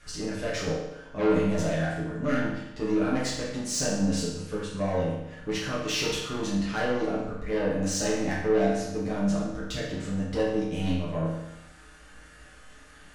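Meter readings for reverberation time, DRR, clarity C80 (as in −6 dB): 0.90 s, −7.5 dB, 4.5 dB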